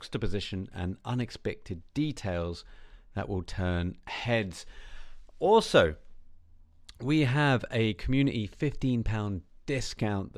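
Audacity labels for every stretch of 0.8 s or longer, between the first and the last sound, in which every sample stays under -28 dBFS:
4.450000	5.430000	silence
5.910000	7.050000	silence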